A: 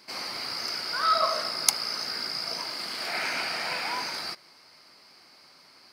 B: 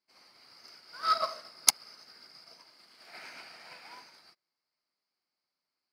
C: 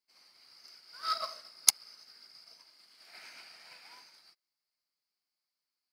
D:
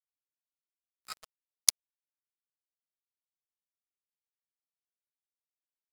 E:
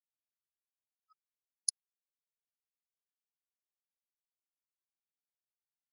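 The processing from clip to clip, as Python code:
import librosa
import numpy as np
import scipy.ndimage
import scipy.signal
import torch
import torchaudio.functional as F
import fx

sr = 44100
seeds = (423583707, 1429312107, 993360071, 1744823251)

y1 = fx.upward_expand(x, sr, threshold_db=-41.0, expansion=2.5)
y2 = fx.high_shelf(y1, sr, hz=2100.0, db=10.0)
y2 = F.gain(torch.from_numpy(y2), -9.5).numpy()
y3 = np.sign(y2) * np.maximum(np.abs(y2) - 10.0 ** (-28.0 / 20.0), 0.0)
y4 = fx.spectral_expand(y3, sr, expansion=4.0)
y4 = F.gain(torch.from_numpy(y4), -9.0).numpy()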